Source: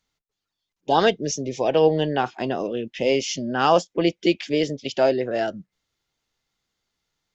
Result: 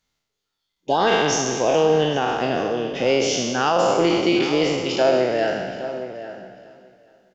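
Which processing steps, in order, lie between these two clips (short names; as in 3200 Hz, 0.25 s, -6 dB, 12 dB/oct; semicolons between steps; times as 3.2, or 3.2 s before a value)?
spectral trails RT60 1.39 s; on a send: feedback echo 0.416 s, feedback 46%, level -17 dB; on the sum: limiter -8.5 dBFS, peak gain reduction 7 dB; outdoor echo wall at 140 m, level -12 dB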